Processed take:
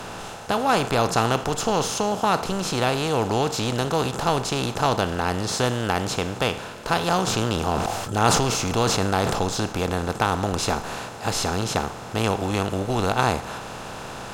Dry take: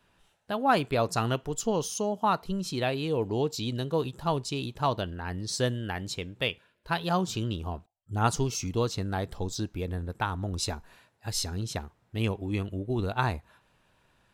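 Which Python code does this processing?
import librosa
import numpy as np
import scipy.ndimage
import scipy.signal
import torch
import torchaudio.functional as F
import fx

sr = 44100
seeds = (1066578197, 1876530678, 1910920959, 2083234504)

y = fx.bin_compress(x, sr, power=0.4)
y = fx.sustainer(y, sr, db_per_s=28.0, at=(7.26, 9.39), fade=0.02)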